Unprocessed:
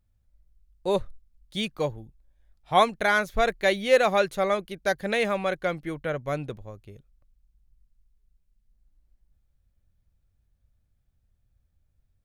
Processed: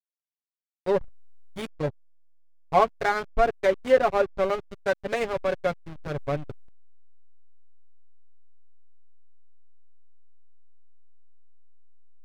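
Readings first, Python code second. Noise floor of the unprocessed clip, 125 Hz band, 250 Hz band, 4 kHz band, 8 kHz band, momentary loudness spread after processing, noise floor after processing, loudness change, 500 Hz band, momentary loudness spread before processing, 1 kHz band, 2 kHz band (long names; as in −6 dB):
−71 dBFS, 0.0 dB, −3.0 dB, −8.5 dB, can't be measured, 14 LU, below −85 dBFS, −0.5 dB, +0.5 dB, 12 LU, −0.5 dB, −5.0 dB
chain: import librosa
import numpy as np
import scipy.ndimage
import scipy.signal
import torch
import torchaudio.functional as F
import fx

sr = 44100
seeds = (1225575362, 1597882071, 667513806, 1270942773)

y = fx.high_shelf(x, sr, hz=4900.0, db=-8.0)
y = y + 0.7 * np.pad(y, (int(7.2 * sr / 1000.0), 0))[:len(y)]
y = fx.env_lowpass_down(y, sr, base_hz=1600.0, full_db=-16.5)
y = fx.backlash(y, sr, play_db=-21.5)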